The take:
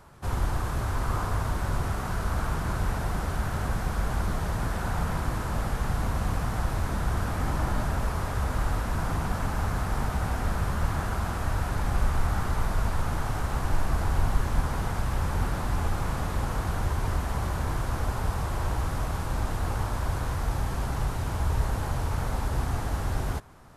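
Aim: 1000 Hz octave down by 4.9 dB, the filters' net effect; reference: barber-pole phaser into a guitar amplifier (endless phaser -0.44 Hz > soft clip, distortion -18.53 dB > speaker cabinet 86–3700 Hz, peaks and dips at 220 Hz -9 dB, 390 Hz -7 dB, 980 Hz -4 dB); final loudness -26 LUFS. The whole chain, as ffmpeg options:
-filter_complex "[0:a]equalizer=f=1k:t=o:g=-4,asplit=2[a][b];[b]afreqshift=-0.44[c];[a][c]amix=inputs=2:normalize=1,asoftclip=threshold=-21.5dB,highpass=86,equalizer=f=220:t=q:w=4:g=-9,equalizer=f=390:t=q:w=4:g=-7,equalizer=f=980:t=q:w=4:g=-4,lowpass=f=3.7k:w=0.5412,lowpass=f=3.7k:w=1.3066,volume=12.5dB"

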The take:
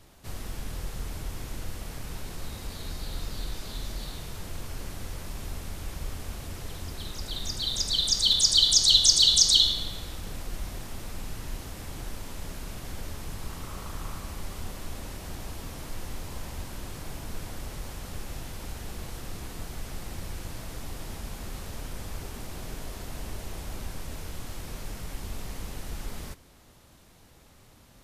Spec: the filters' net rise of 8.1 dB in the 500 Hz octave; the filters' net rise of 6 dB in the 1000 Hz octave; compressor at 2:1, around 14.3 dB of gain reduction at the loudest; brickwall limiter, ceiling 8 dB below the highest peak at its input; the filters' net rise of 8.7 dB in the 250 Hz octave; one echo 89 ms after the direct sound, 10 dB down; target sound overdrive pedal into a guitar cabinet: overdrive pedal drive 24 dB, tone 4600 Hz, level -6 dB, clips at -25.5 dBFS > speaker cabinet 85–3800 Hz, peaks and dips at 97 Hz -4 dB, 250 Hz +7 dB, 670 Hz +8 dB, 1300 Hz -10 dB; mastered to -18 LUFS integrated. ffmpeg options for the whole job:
-filter_complex "[0:a]equalizer=f=250:t=o:g=5.5,equalizer=f=500:t=o:g=3.5,equalizer=f=1k:t=o:g=5,acompressor=threshold=-42dB:ratio=2,alimiter=level_in=3.5dB:limit=-24dB:level=0:latency=1,volume=-3.5dB,aecho=1:1:89:0.316,asplit=2[a][b];[b]highpass=f=720:p=1,volume=24dB,asoftclip=type=tanh:threshold=-25.5dB[c];[a][c]amix=inputs=2:normalize=0,lowpass=f=4.6k:p=1,volume=-6dB,highpass=85,equalizer=f=97:t=q:w=4:g=-4,equalizer=f=250:t=q:w=4:g=7,equalizer=f=670:t=q:w=4:g=8,equalizer=f=1.3k:t=q:w=4:g=-10,lowpass=f=3.8k:w=0.5412,lowpass=f=3.8k:w=1.3066,volume=17dB"

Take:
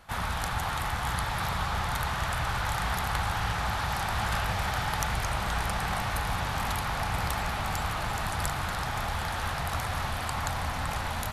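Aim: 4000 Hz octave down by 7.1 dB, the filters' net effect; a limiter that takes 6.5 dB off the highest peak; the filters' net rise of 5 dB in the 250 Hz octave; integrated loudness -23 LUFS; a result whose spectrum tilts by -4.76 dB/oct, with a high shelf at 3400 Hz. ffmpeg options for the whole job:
-af "equalizer=f=250:t=o:g=7.5,highshelf=f=3.4k:g=-8.5,equalizer=f=4k:t=o:g=-3.5,volume=9.5dB,alimiter=limit=-13dB:level=0:latency=1"

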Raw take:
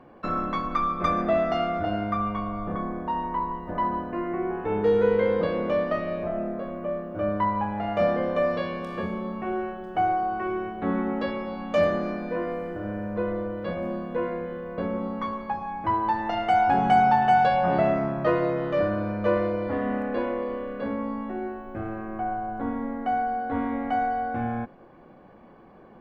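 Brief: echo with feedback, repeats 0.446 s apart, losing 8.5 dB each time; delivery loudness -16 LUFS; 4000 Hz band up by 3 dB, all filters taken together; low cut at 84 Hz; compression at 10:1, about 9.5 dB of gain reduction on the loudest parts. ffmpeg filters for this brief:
-af "highpass=84,equalizer=f=4k:t=o:g=4.5,acompressor=threshold=-25dB:ratio=10,aecho=1:1:446|892|1338|1784:0.376|0.143|0.0543|0.0206,volume=14dB"

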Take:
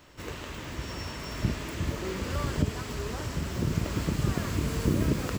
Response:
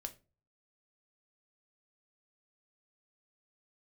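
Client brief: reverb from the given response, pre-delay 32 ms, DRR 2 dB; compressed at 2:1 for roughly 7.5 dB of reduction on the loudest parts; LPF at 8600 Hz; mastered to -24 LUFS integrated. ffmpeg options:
-filter_complex "[0:a]lowpass=8.6k,acompressor=threshold=-35dB:ratio=2,asplit=2[a][b];[1:a]atrim=start_sample=2205,adelay=32[c];[b][c]afir=irnorm=-1:irlink=0,volume=1dB[d];[a][d]amix=inputs=2:normalize=0,volume=10.5dB"

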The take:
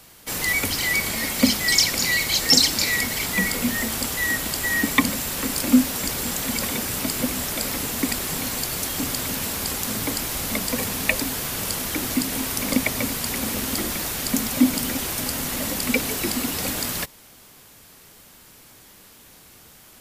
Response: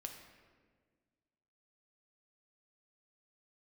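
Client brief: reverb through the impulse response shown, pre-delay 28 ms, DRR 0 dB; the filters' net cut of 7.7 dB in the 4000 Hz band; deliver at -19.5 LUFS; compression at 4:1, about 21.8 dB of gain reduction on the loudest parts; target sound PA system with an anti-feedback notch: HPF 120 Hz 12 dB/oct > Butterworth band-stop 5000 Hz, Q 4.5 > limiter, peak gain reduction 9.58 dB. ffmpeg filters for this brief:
-filter_complex "[0:a]equalizer=f=4k:t=o:g=-6,acompressor=threshold=-39dB:ratio=4,asplit=2[a][b];[1:a]atrim=start_sample=2205,adelay=28[c];[b][c]afir=irnorm=-1:irlink=0,volume=3.5dB[d];[a][d]amix=inputs=2:normalize=0,highpass=120,asuperstop=centerf=5000:order=8:qfactor=4.5,volume=19dB,alimiter=limit=-11dB:level=0:latency=1"

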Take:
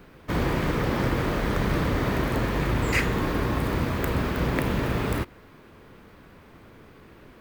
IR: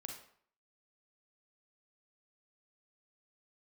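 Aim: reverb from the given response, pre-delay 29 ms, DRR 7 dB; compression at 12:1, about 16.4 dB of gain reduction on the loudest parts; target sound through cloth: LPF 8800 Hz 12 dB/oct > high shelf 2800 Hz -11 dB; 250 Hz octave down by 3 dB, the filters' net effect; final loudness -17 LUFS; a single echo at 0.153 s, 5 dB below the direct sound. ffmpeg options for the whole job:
-filter_complex "[0:a]equalizer=f=250:t=o:g=-4,acompressor=threshold=-38dB:ratio=12,aecho=1:1:153:0.562,asplit=2[a][b];[1:a]atrim=start_sample=2205,adelay=29[c];[b][c]afir=irnorm=-1:irlink=0,volume=-3.5dB[d];[a][d]amix=inputs=2:normalize=0,lowpass=8.8k,highshelf=f=2.8k:g=-11,volume=25.5dB"

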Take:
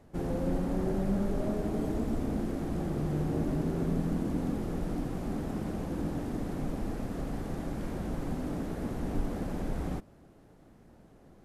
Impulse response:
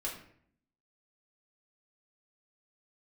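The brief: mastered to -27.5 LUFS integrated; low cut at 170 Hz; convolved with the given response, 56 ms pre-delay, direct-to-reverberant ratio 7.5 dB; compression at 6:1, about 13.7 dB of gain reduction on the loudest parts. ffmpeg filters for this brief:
-filter_complex "[0:a]highpass=170,acompressor=threshold=-44dB:ratio=6,asplit=2[a][b];[1:a]atrim=start_sample=2205,adelay=56[c];[b][c]afir=irnorm=-1:irlink=0,volume=-9dB[d];[a][d]amix=inputs=2:normalize=0,volume=18.5dB"

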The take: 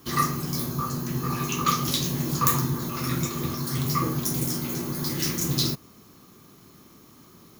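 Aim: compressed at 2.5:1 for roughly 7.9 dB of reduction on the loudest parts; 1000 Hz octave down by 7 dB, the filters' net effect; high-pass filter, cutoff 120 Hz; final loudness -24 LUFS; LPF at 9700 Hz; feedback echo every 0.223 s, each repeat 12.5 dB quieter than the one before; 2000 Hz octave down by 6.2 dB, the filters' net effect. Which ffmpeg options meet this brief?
-af "highpass=120,lowpass=9.7k,equalizer=f=1k:t=o:g=-6.5,equalizer=f=2k:t=o:g=-6,acompressor=threshold=-35dB:ratio=2.5,aecho=1:1:223|446|669:0.237|0.0569|0.0137,volume=11.5dB"

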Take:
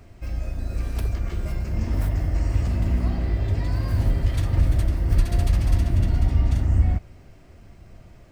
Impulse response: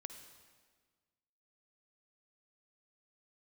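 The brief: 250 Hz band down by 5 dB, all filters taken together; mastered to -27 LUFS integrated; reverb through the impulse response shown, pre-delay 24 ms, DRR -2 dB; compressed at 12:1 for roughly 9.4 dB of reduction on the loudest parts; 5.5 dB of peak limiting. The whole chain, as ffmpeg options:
-filter_complex "[0:a]equalizer=f=250:t=o:g=-7.5,acompressor=threshold=-23dB:ratio=12,alimiter=limit=-22.5dB:level=0:latency=1,asplit=2[a][b];[1:a]atrim=start_sample=2205,adelay=24[c];[b][c]afir=irnorm=-1:irlink=0,volume=6dB[d];[a][d]amix=inputs=2:normalize=0,volume=2dB"

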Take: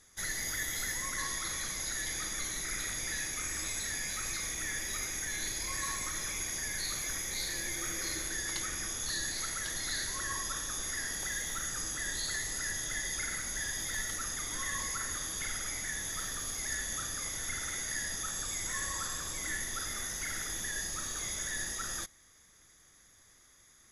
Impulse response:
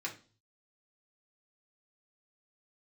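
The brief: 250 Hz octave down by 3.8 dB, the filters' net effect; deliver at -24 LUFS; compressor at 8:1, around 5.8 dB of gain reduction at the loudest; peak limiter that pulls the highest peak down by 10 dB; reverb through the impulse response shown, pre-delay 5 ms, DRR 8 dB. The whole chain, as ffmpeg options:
-filter_complex "[0:a]equalizer=f=250:t=o:g=-5.5,acompressor=threshold=-38dB:ratio=8,alimiter=level_in=12.5dB:limit=-24dB:level=0:latency=1,volume=-12.5dB,asplit=2[a][b];[1:a]atrim=start_sample=2205,adelay=5[c];[b][c]afir=irnorm=-1:irlink=0,volume=-10dB[d];[a][d]amix=inputs=2:normalize=0,volume=19.5dB"

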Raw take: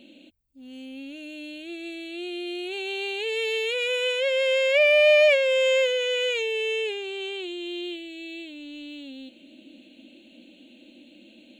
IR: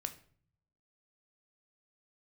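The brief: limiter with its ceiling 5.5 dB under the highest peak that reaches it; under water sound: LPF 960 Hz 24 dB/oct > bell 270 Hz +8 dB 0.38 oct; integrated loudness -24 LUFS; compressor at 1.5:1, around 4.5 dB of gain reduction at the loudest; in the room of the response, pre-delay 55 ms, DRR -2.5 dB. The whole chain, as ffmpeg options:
-filter_complex "[0:a]acompressor=threshold=-27dB:ratio=1.5,alimiter=limit=-20dB:level=0:latency=1,asplit=2[a][b];[1:a]atrim=start_sample=2205,adelay=55[c];[b][c]afir=irnorm=-1:irlink=0,volume=3.5dB[d];[a][d]amix=inputs=2:normalize=0,lowpass=f=960:w=0.5412,lowpass=f=960:w=1.3066,equalizer=f=270:t=o:w=0.38:g=8,volume=2.5dB"

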